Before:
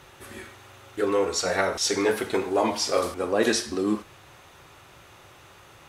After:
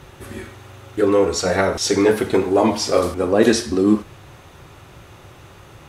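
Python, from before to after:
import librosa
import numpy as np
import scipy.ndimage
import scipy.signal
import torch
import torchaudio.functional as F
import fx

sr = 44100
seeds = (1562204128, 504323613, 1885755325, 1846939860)

y = fx.low_shelf(x, sr, hz=410.0, db=10.5)
y = y * librosa.db_to_amplitude(3.0)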